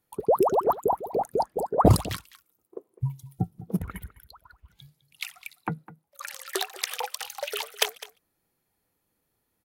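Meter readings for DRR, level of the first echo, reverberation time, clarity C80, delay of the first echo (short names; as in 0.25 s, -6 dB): none, -17.5 dB, none, none, 0.205 s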